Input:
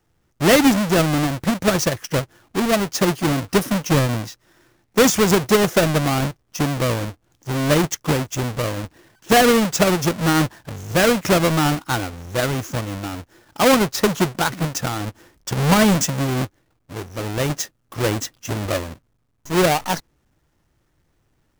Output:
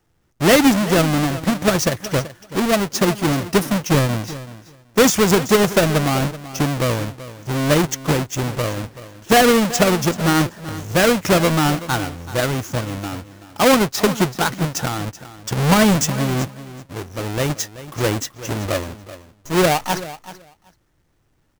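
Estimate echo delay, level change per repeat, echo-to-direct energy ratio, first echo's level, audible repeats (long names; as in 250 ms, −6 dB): 381 ms, −16.5 dB, −15.5 dB, −15.5 dB, 2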